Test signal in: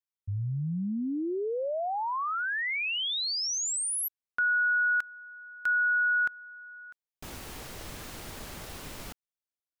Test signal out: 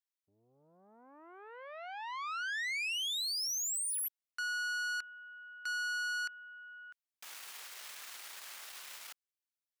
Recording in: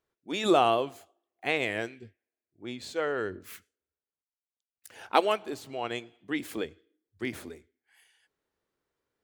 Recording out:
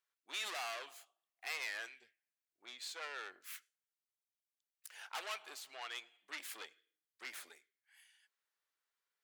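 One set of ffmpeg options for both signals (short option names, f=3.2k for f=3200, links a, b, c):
-af "aeval=exprs='(tanh(44.7*val(0)+0.55)-tanh(0.55))/44.7':c=same,highpass=1.3k"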